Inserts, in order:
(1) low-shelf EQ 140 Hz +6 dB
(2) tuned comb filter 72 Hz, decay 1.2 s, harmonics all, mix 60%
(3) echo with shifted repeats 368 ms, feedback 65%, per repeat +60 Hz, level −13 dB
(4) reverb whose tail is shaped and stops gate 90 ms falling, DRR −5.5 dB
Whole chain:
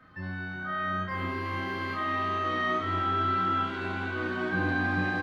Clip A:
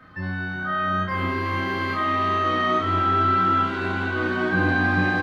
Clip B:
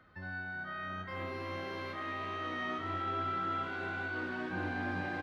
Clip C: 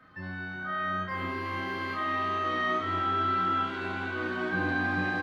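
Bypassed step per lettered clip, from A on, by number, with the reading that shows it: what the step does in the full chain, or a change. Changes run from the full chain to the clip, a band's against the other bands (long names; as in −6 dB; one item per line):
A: 2, change in integrated loudness +7.0 LU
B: 4, 125 Hz band −2.0 dB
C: 1, 125 Hz band −3.5 dB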